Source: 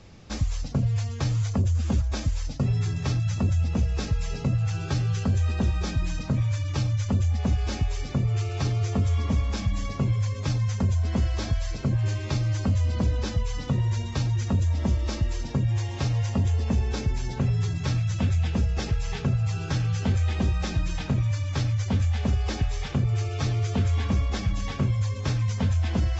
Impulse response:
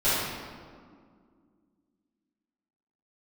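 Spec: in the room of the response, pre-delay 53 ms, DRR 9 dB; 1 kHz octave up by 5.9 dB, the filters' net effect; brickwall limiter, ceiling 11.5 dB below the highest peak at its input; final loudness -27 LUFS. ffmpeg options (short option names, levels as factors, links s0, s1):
-filter_complex "[0:a]equalizer=f=1000:t=o:g=7.5,alimiter=level_in=1.06:limit=0.0631:level=0:latency=1,volume=0.944,asplit=2[s0][s1];[1:a]atrim=start_sample=2205,adelay=53[s2];[s1][s2]afir=irnorm=-1:irlink=0,volume=0.0631[s3];[s0][s3]amix=inputs=2:normalize=0,volume=1.68"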